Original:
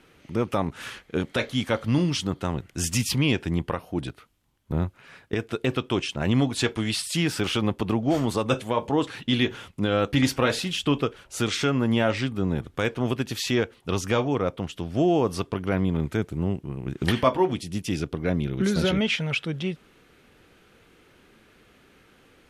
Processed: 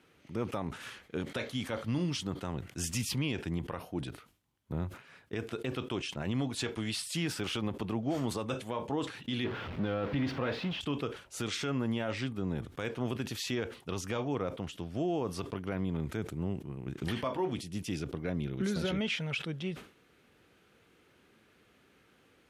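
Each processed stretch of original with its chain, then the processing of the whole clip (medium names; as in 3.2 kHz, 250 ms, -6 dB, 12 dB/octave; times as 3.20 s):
9.44–10.81 s: jump at every zero crossing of -24 dBFS + distance through air 340 m + tape noise reduction on one side only decoder only
whole clip: high-pass 64 Hz; peak limiter -15.5 dBFS; decay stretcher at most 130 dB/s; trim -8 dB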